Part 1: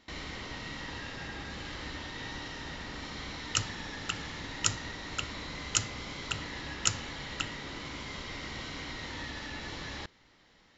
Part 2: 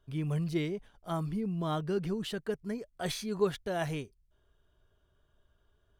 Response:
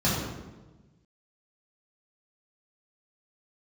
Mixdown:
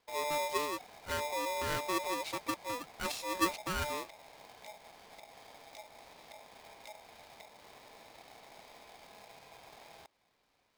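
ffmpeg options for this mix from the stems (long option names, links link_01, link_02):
-filter_complex "[0:a]lowpass=frequency=4500:width=0.5412,lowpass=frequency=4500:width=1.3066,acrossover=split=200[link_01][link_02];[link_02]acompressor=threshold=-45dB:ratio=2.5[link_03];[link_01][link_03]amix=inputs=2:normalize=0,volume=-11dB[link_04];[1:a]agate=range=-33dB:threshold=-58dB:ratio=3:detection=peak,volume=-2.5dB[link_05];[link_04][link_05]amix=inputs=2:normalize=0,asuperstop=centerf=2200:order=12:qfactor=2.1,aeval=exprs='val(0)*sgn(sin(2*PI*740*n/s))':channel_layout=same"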